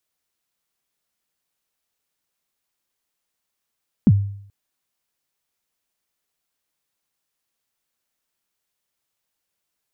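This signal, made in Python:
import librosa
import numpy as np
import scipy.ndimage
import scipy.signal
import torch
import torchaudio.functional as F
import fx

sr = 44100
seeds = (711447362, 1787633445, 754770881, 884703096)

y = fx.drum_kick(sr, seeds[0], length_s=0.43, level_db=-6.5, start_hz=260.0, end_hz=100.0, sweep_ms=44.0, decay_s=0.64, click=False)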